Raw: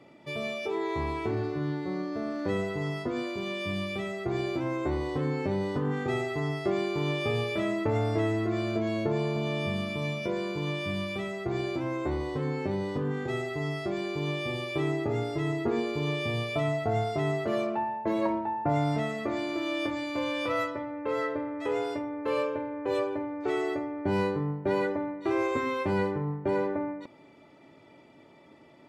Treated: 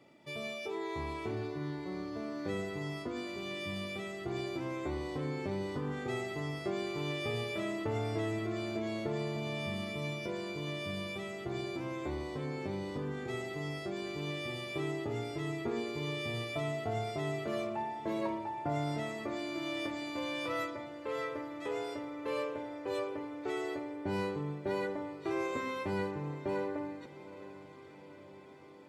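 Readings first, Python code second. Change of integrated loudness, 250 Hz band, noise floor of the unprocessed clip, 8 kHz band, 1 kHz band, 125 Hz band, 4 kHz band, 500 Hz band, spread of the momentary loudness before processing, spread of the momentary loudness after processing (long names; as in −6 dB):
−7.0 dB, −7.0 dB, −55 dBFS, −1.5 dB, −7.0 dB, −7.5 dB, −4.0 dB, −7.0 dB, 4 LU, 5 LU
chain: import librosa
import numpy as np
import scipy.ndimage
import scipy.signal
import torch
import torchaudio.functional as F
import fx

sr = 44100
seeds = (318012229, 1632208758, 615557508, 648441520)

y = fx.high_shelf(x, sr, hz=3800.0, db=7.5)
y = fx.echo_diffused(y, sr, ms=835, feedback_pct=66, wet_db=-16.0)
y = y * librosa.db_to_amplitude(-7.5)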